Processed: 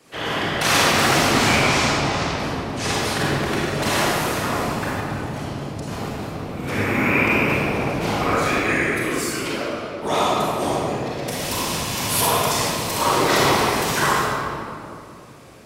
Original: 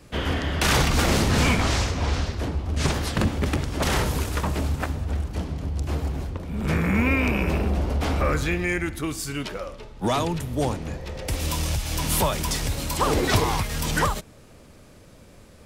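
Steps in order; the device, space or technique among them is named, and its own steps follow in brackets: whispering ghost (whisper effect; high-pass 490 Hz 6 dB/octave; reverberation RT60 2.5 s, pre-delay 30 ms, DRR -7 dB)

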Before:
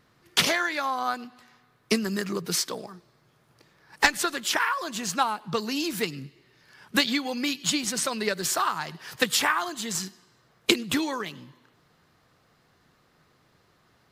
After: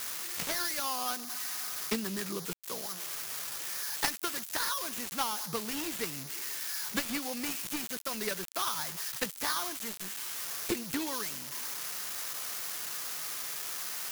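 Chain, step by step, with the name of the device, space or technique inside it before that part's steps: budget class-D amplifier (dead-time distortion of 0.18 ms; zero-crossing glitches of -12.5 dBFS); trim -8 dB

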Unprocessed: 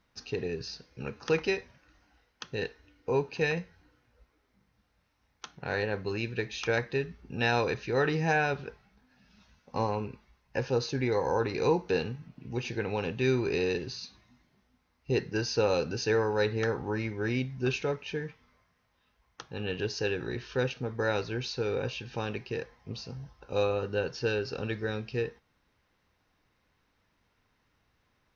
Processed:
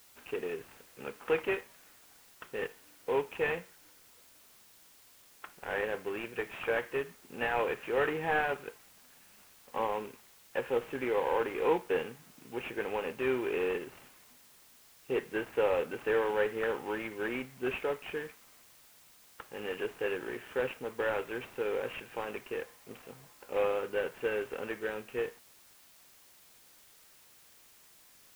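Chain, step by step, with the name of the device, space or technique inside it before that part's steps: army field radio (band-pass 350–3100 Hz; CVSD coder 16 kbps; white noise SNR 24 dB)

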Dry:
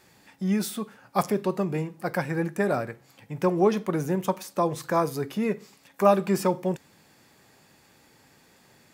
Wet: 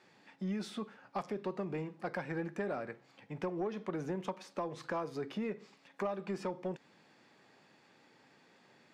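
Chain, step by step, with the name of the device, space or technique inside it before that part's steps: AM radio (band-pass 180–4200 Hz; compression 6:1, threshold -28 dBFS, peak gain reduction 14 dB; saturation -22 dBFS, distortion -21 dB); trim -4.5 dB

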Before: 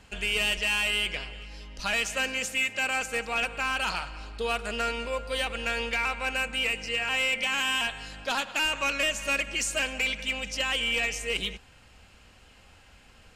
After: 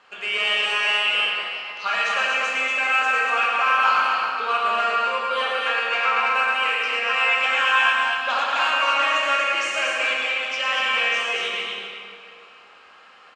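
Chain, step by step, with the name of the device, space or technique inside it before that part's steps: station announcement (band-pass 470–4200 Hz; peaking EQ 1.2 kHz +12 dB 0.38 oct; loudspeakers at several distances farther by 38 m -6 dB, 82 m -4 dB; reverberation RT60 2.4 s, pre-delay 5 ms, DRR -3 dB); 1.03–2.84 s: low-pass 11 kHz 12 dB/octave

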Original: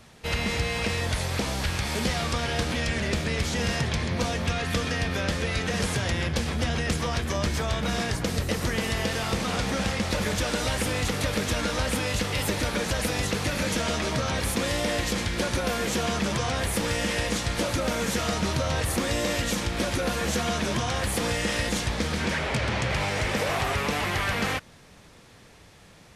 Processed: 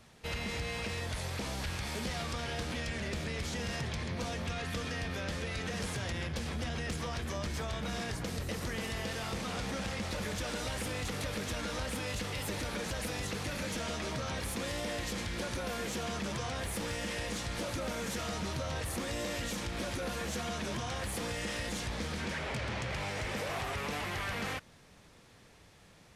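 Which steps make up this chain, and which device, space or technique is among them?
soft clipper into limiter (saturation -18 dBFS, distortion -22 dB; peak limiter -22.5 dBFS, peak gain reduction 3 dB); trim -7 dB

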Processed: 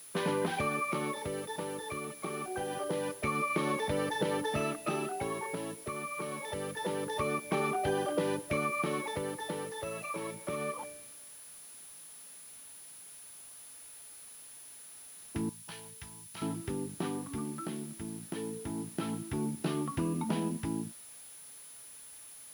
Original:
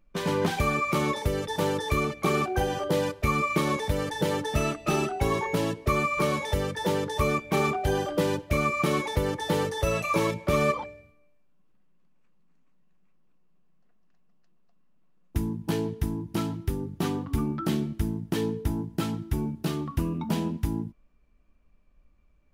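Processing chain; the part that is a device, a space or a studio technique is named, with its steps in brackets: medium wave at night (band-pass 170–3800 Hz; compression, threshold -27 dBFS, peak gain reduction 7.5 dB; tremolo 0.25 Hz, depth 61%; whistle 10 kHz -49 dBFS; white noise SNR 20 dB); 15.49–16.42 s: amplifier tone stack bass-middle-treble 10-0-10

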